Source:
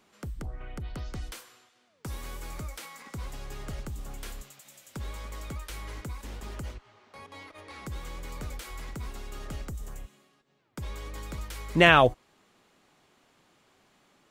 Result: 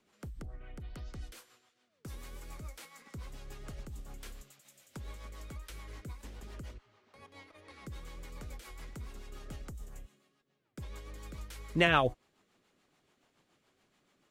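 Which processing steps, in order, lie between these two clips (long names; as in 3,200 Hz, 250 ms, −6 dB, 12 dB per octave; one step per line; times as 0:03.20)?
rotating-speaker cabinet horn 7 Hz
level −5.5 dB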